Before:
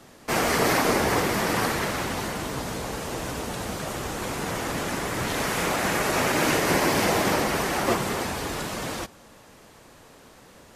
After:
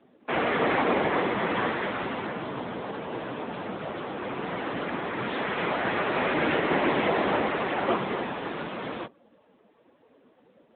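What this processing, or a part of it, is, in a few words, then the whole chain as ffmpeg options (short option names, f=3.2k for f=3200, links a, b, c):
mobile call with aggressive noise cancelling: -af "highpass=170,afftdn=nr=13:nf=-43" -ar 8000 -c:a libopencore_amrnb -b:a 10200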